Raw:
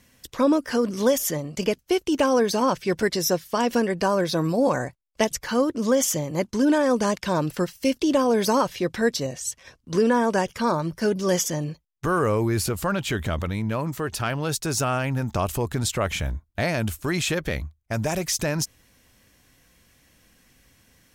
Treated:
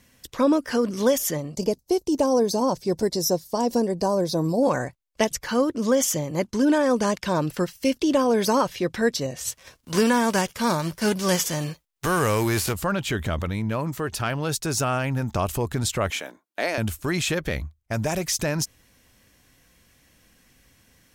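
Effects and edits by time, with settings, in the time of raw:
1.54–4.63 s: high-order bell 2 kHz -14 dB
9.36–12.72 s: formants flattened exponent 0.6
16.10–16.78 s: high-pass 290 Hz 24 dB/octave

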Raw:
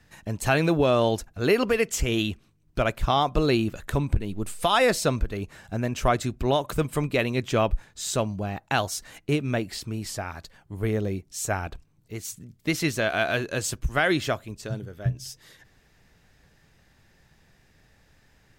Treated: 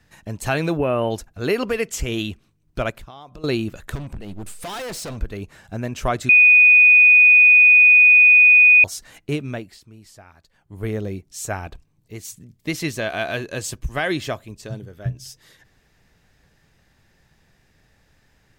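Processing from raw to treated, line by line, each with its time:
0.77–1.11 s: time-frequency box 3.1–8.8 kHz -22 dB
2.90–3.44 s: compression 8:1, threshold -37 dBFS
3.95–5.18 s: overload inside the chain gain 29 dB
6.29–8.84 s: bleep 2.48 kHz -7.5 dBFS
9.39–10.86 s: dip -13.5 dB, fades 0.40 s
11.56–14.93 s: band-stop 1.4 kHz, Q 9.3

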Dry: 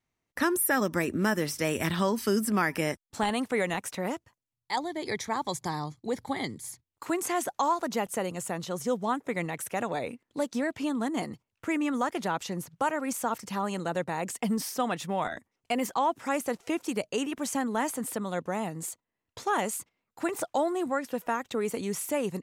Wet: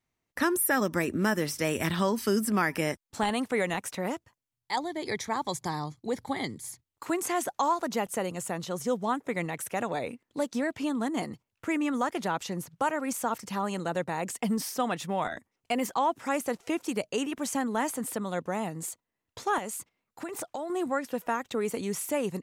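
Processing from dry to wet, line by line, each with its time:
19.58–20.70 s: compression, threshold -32 dBFS

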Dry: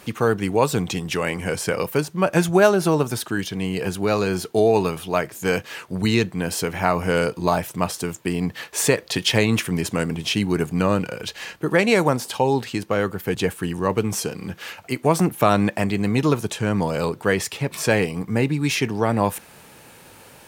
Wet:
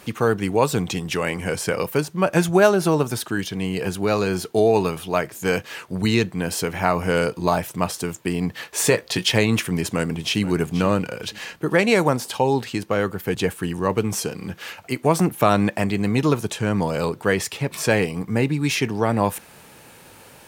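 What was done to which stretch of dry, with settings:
8.77–9.29 s: doubling 17 ms -10 dB
9.86–10.42 s: echo throw 480 ms, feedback 30%, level -15 dB

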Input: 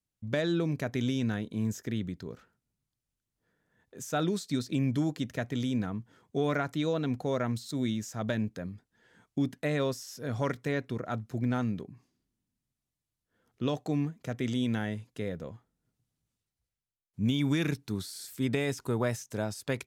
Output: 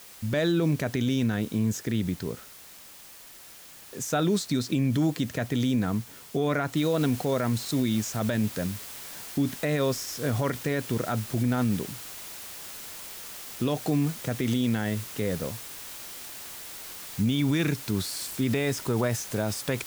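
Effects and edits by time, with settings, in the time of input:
6.77 s: noise floor step -56 dB -49 dB
whole clip: peak limiter -24.5 dBFS; trim +8 dB

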